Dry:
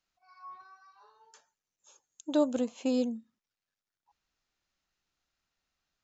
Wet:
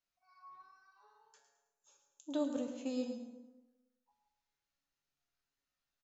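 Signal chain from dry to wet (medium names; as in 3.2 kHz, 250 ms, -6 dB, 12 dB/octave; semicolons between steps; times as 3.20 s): feedback comb 140 Hz, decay 0.55 s, harmonics all, mix 80%; feedback delay 107 ms, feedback 38%, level -11 dB; on a send at -9.5 dB: reverberation RT60 1.1 s, pre-delay 97 ms; on the sum: trim +2 dB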